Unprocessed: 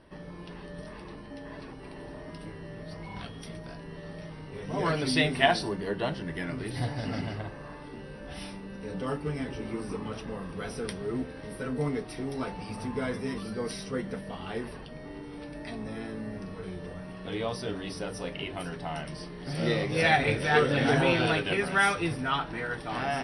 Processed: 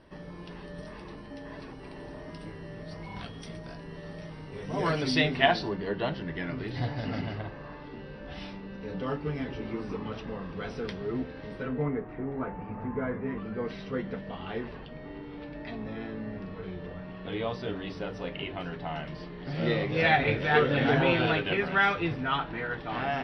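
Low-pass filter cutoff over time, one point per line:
low-pass filter 24 dB per octave
0:04.92 8,200 Hz
0:05.37 4,600 Hz
0:11.54 4,600 Hz
0:11.96 1,900 Hz
0:13.17 1,900 Hz
0:13.92 3,900 Hz

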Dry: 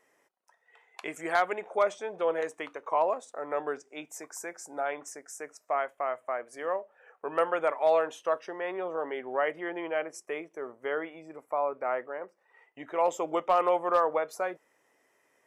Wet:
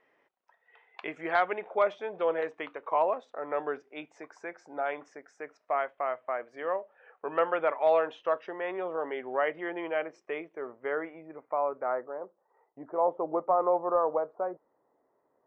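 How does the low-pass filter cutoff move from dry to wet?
low-pass filter 24 dB per octave
0:10.48 3,700 Hz
0:10.98 2,200 Hz
0:11.62 2,200 Hz
0:12.23 1,100 Hz

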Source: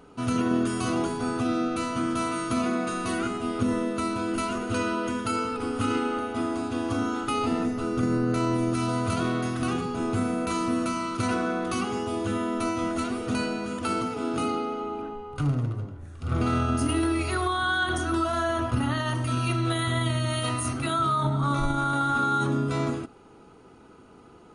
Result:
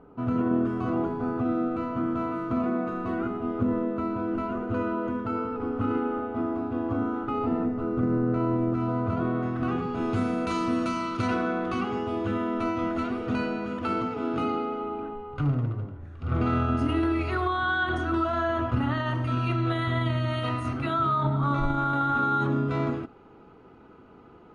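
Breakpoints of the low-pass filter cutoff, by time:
0:09.32 1,200 Hz
0:09.80 2,000 Hz
0:10.19 4,800 Hz
0:10.99 4,800 Hz
0:11.69 2,600 Hz

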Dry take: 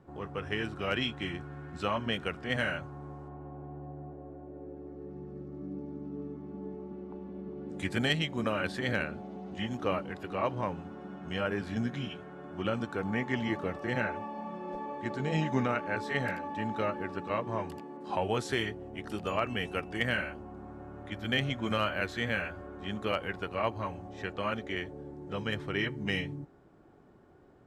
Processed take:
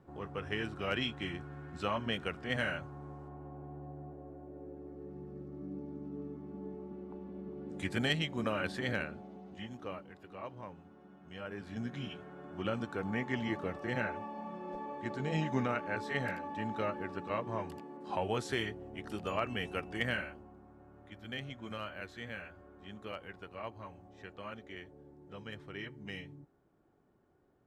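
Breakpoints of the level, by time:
0:08.82 −3 dB
0:10.11 −13.5 dB
0:11.30 −13.5 dB
0:12.10 −3.5 dB
0:20.09 −3.5 dB
0:20.65 −12 dB

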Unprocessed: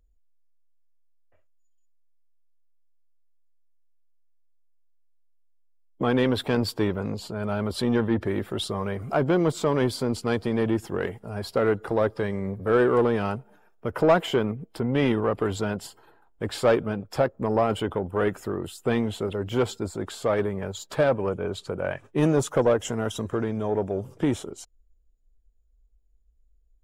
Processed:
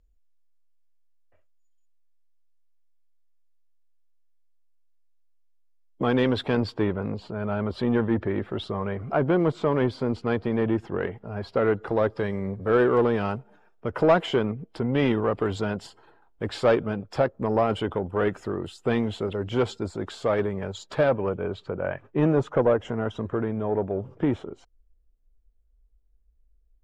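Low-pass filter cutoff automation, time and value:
0:06.14 6,900 Hz
0:06.83 2,700 Hz
0:11.38 2,700 Hz
0:12.11 5,400 Hz
0:20.83 5,400 Hz
0:21.81 2,200 Hz

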